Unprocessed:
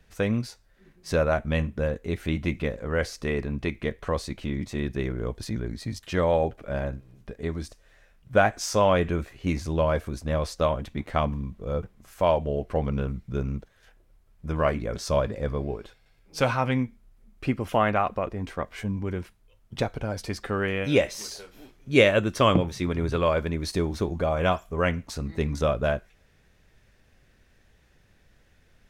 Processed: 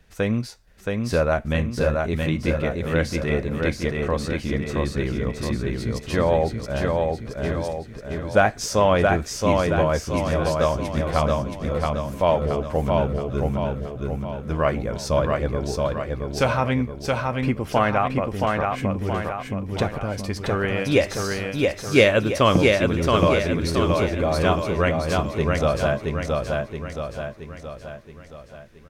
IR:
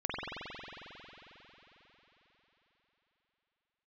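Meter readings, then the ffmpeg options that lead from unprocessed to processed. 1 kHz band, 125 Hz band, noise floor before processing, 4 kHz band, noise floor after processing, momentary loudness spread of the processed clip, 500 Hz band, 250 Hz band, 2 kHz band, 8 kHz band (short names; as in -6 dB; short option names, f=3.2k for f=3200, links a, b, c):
+4.5 dB, +5.0 dB, -61 dBFS, +4.5 dB, -42 dBFS, 10 LU, +4.5 dB, +4.5 dB, +4.5 dB, +4.5 dB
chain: -af "aecho=1:1:673|1346|2019|2692|3365|4038|4711:0.708|0.361|0.184|0.0939|0.0479|0.0244|0.0125,volume=2.5dB"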